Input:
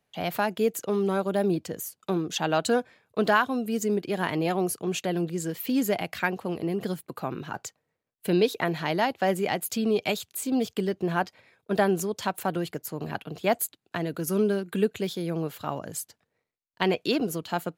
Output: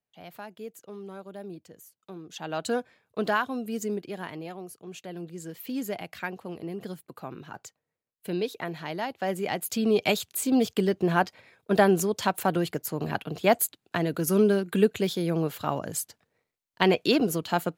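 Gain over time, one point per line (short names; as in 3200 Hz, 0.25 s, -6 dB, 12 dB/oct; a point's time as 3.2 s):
2.15 s -15.5 dB
2.71 s -4 dB
3.86 s -4 dB
4.66 s -15 dB
5.63 s -7 dB
9.02 s -7 dB
10.07 s +3 dB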